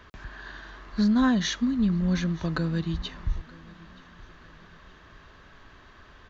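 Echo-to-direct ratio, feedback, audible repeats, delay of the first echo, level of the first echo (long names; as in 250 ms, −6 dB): −22.5 dB, 39%, 2, 925 ms, −23.0 dB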